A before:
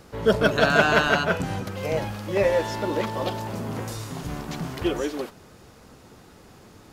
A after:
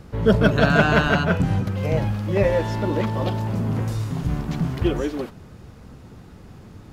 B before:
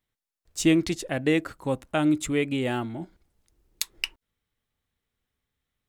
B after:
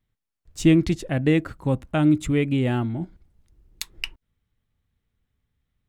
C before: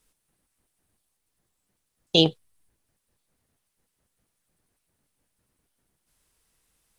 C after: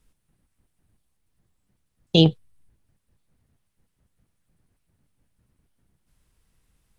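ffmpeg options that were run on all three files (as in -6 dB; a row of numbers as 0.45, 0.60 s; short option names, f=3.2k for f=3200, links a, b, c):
-af "bass=f=250:g=11,treble=f=4k:g=-5"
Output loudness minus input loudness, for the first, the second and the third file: +3.0, +4.0, +2.0 LU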